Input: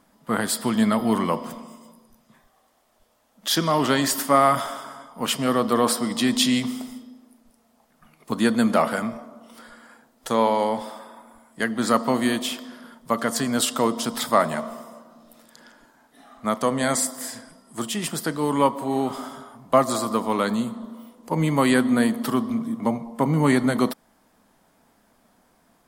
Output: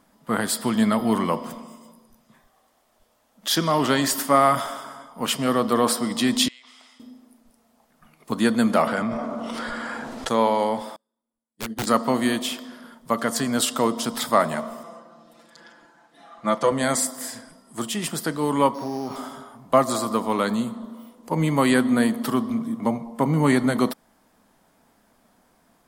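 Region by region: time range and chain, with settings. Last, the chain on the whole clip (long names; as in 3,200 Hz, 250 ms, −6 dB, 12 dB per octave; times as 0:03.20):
0:06.48–0:07.00: high-pass filter 1,300 Hz + downward compressor 10 to 1, threshold −41 dBFS + high-frequency loss of the air 100 metres
0:08.87–0:10.29: high-frequency loss of the air 70 metres + envelope flattener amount 70%
0:10.96–0:11.87: flat-topped bell 1,300 Hz −10 dB 2.4 octaves + wrap-around overflow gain 19.5 dB + expander for the loud parts 2.5 to 1, over −46 dBFS
0:14.83–0:16.72: high-pass filter 150 Hz 6 dB per octave + high-frequency loss of the air 61 metres + comb filter 5.9 ms, depth 90%
0:18.74–0:19.16: samples sorted by size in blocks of 8 samples + bass and treble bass +1 dB, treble −10 dB + downward compressor, threshold −24 dBFS
whole clip: no processing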